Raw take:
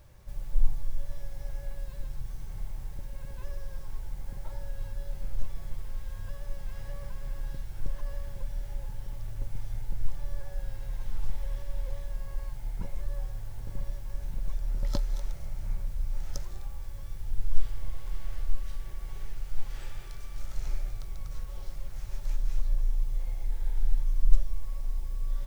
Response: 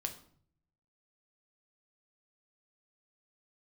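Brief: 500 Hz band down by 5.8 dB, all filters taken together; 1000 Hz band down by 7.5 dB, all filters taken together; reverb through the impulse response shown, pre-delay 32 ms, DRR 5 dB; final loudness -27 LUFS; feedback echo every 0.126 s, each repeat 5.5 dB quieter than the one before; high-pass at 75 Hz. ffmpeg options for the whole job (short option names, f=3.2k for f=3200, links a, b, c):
-filter_complex "[0:a]highpass=75,equalizer=f=500:t=o:g=-4.5,equalizer=f=1k:t=o:g=-8,aecho=1:1:126|252|378|504|630|756|882:0.531|0.281|0.149|0.079|0.0419|0.0222|0.0118,asplit=2[a][b];[1:a]atrim=start_sample=2205,adelay=32[c];[b][c]afir=irnorm=-1:irlink=0,volume=-5dB[d];[a][d]amix=inputs=2:normalize=0,volume=19dB"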